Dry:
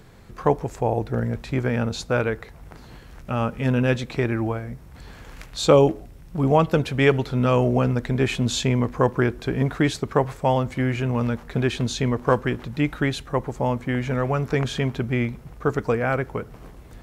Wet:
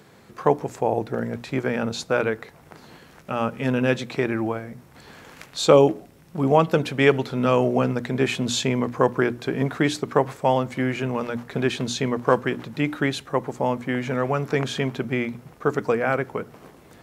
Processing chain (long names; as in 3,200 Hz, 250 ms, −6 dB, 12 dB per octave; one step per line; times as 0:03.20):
high-pass filter 160 Hz 12 dB per octave
mains-hum notches 60/120/180/240/300 Hz
level +1 dB